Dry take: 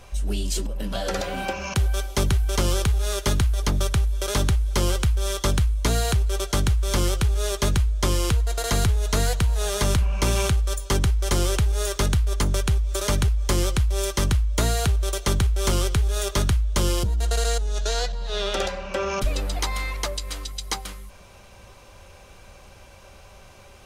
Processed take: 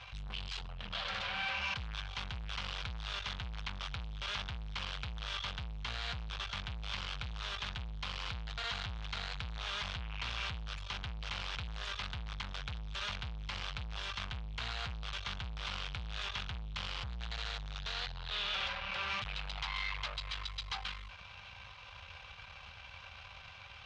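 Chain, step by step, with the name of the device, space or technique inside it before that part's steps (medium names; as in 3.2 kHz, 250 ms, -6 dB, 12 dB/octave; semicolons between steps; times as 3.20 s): scooped metal amplifier (valve stage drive 37 dB, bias 0.75; cabinet simulation 85–3600 Hz, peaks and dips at 380 Hz -6 dB, 590 Hz -6 dB, 1.9 kHz -4 dB; amplifier tone stack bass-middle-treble 10-0-10); trim +12 dB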